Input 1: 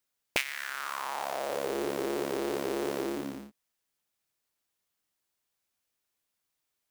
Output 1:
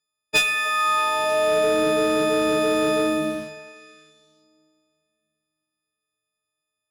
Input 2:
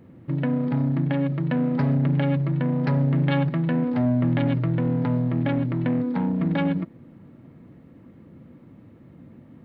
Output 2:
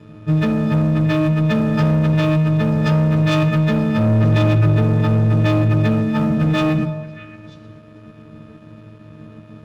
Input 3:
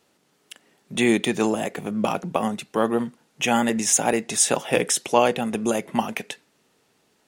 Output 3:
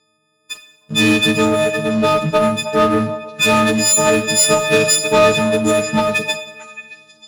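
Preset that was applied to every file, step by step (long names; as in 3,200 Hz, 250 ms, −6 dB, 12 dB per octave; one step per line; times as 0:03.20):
every partial snapped to a pitch grid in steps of 6 semitones
high-frequency loss of the air 110 metres
leveller curve on the samples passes 2
thirty-one-band graphic EQ 160 Hz +7 dB, 800 Hz −11 dB, 2,000 Hz −5 dB
on a send: echo through a band-pass that steps 312 ms, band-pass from 740 Hz, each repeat 1.4 octaves, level −11 dB
on the sum: coupled-rooms reverb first 0.72 s, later 3.4 s, from −22 dB, DRR 8 dB
in parallel at −10 dB: wave folding −17.5 dBFS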